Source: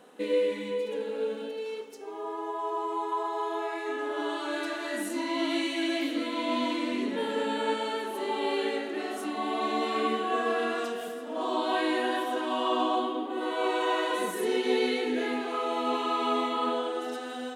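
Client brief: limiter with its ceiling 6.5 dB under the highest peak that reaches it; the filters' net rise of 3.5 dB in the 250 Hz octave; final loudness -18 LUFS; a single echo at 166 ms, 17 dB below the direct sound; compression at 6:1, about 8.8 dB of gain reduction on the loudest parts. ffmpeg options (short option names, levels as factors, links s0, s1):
-af "equalizer=f=250:t=o:g=4.5,acompressor=threshold=0.0316:ratio=6,alimiter=level_in=1.5:limit=0.0631:level=0:latency=1,volume=0.668,aecho=1:1:166:0.141,volume=7.94"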